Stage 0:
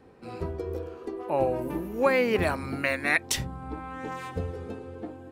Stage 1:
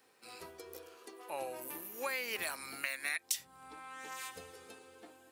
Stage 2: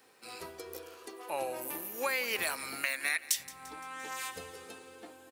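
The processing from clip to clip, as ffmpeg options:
-af "aderivative,acompressor=threshold=-41dB:ratio=4,volume=7dB"
-filter_complex "[0:a]aecho=1:1:172|344|516|688|860:0.112|0.0617|0.0339|0.0187|0.0103,asplit=2[a][b];[b]aeval=exprs='0.15*sin(PI/2*1.78*val(0)/0.15)':c=same,volume=-10.5dB[c];[a][c]amix=inputs=2:normalize=0"

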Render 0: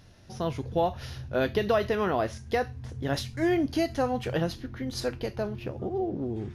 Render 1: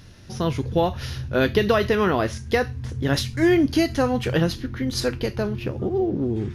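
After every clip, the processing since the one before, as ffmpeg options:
-af "equalizer=f=700:w=1.8:g=-7,volume=8.5dB"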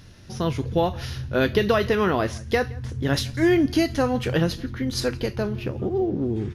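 -filter_complex "[0:a]asplit=2[a][b];[b]adelay=169.1,volume=-23dB,highshelf=f=4k:g=-3.8[c];[a][c]amix=inputs=2:normalize=0,volume=-1dB"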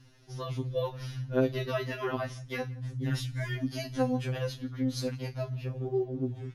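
-af "afftfilt=real='re*2.45*eq(mod(b,6),0)':imag='im*2.45*eq(mod(b,6),0)':win_size=2048:overlap=0.75,volume=-8dB"

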